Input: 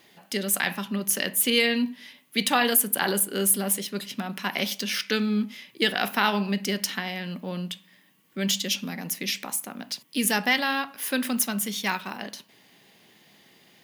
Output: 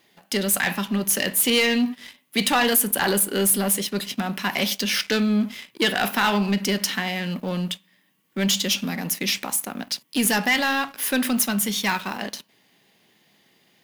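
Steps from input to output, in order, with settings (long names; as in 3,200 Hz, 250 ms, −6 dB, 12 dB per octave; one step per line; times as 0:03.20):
leveller curve on the samples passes 2
in parallel at −4 dB: soft clipping −25 dBFS, distortion −6 dB
on the sum: level −4.5 dB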